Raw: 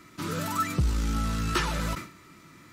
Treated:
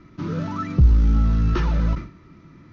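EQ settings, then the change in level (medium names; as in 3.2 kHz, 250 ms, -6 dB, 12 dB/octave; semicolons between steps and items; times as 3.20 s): steep low-pass 6.5 kHz 96 dB/octave; tilt EQ -3.5 dB/octave; hum notches 50/100 Hz; -1.0 dB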